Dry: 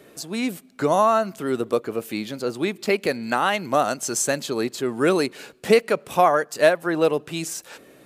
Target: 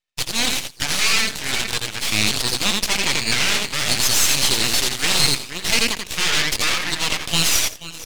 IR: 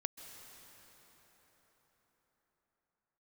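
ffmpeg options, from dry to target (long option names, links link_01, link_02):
-filter_complex "[0:a]aphaser=in_gain=1:out_gain=1:delay=1.1:decay=0.57:speed=0.31:type=sinusoidal,agate=range=-39dB:threshold=-36dB:ratio=16:detection=peak,dynaudnorm=framelen=160:gausssize=5:maxgain=5.5dB,asplit=2[link_01][link_02];[link_02]adelay=481,lowpass=frequency=3100:poles=1,volume=-13dB,asplit=2[link_03][link_04];[link_04]adelay=481,lowpass=frequency=3100:poles=1,volume=0.33,asplit=2[link_05][link_06];[link_06]adelay=481,lowpass=frequency=3100:poles=1,volume=0.33[link_07];[link_03][link_05][link_07]amix=inputs=3:normalize=0[link_08];[link_01][link_08]amix=inputs=2:normalize=0,crystalizer=i=5:c=0,asoftclip=type=tanh:threshold=-3dB,asplit=2[link_09][link_10];[link_10]aecho=0:1:85|170|255:0.531|0.0903|0.0153[link_11];[link_09][link_11]amix=inputs=2:normalize=0,acontrast=44,aeval=exprs='1*(cos(1*acos(clip(val(0)/1,-1,1)))-cos(1*PI/2))+0.501*(cos(6*acos(clip(val(0)/1,-1,1)))-cos(6*PI/2))':channel_layout=same,asuperpass=centerf=3600:order=4:qfactor=0.91,aeval=exprs='max(val(0),0)':channel_layout=same,volume=-1.5dB"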